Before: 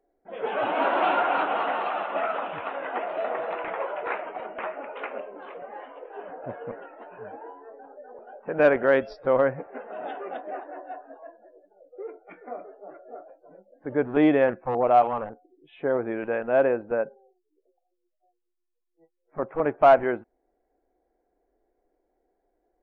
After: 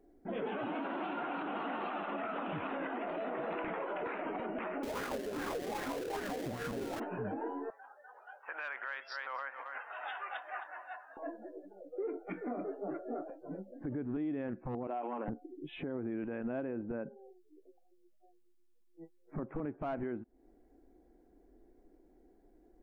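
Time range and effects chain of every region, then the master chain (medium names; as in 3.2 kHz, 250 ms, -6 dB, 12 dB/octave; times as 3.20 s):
4.83–7.00 s: square wave that keeps the level + hum notches 60/120/180/240/300/360 Hz + sweeping bell 2.5 Hz 340–1600 Hz +11 dB
7.70–11.17 s: high-pass 1 kHz 24 dB/octave + delay 267 ms -16.5 dB
14.87–15.28 s: Chebyshev band-pass 290–2800 Hz, order 3 + compression, threshold -19 dBFS + band-stop 1.2 kHz, Q 11
whole clip: resonant low shelf 390 Hz +10 dB, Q 1.5; compression 8:1, threshold -34 dBFS; peak limiter -33.5 dBFS; trim +3.5 dB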